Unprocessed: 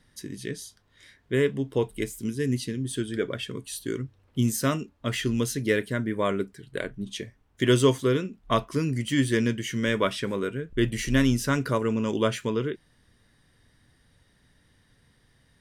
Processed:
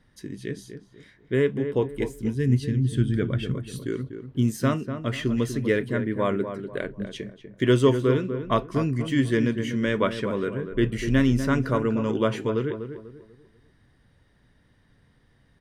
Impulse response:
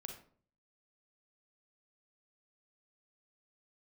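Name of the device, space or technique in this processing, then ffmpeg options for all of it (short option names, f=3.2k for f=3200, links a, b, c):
through cloth: -filter_complex "[0:a]asettb=1/sr,asplit=3[a][b][c];[a]atrim=end=1.894[d];[b]atrim=start=1.89:end=3.54,asetpts=PTS-STARTPTS,afade=t=in:d=0.004:c=qsin,afade=t=out:st=1.646:d=0.004:c=qsin,asubboost=boost=11.5:cutoff=180[e];[c]atrim=start=3.536[f];[d][e]acrossfade=d=0.004:c1=hsin:c2=qsin[g];[g][f]acrossfade=d=0.004:c1=qsin:c2=hsin,highshelf=f=3.7k:g=-12,asplit=2[h][i];[i]adelay=245,lowpass=f=1.5k:p=1,volume=-8.5dB,asplit=2[j][k];[k]adelay=245,lowpass=f=1.5k:p=1,volume=0.35,asplit=2[l][m];[m]adelay=245,lowpass=f=1.5k:p=1,volume=0.35,asplit=2[n][o];[o]adelay=245,lowpass=f=1.5k:p=1,volume=0.35[p];[h][j][l][n][p]amix=inputs=5:normalize=0,volume=1.5dB"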